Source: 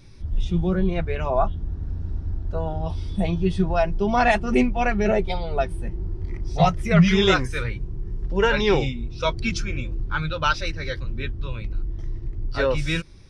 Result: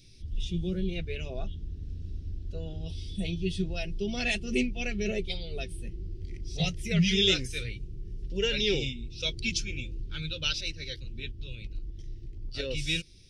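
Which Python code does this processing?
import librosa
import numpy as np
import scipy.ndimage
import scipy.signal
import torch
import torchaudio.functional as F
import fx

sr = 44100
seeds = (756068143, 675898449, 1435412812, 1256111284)

y = fx.curve_eq(x, sr, hz=(460.0, 1000.0, 2800.0), db=(0, -24, 10))
y = fx.tremolo_shape(y, sr, shape='saw_up', hz=8.5, depth_pct=40, at=(10.61, 12.71))
y = y * librosa.db_to_amplitude(-9.0)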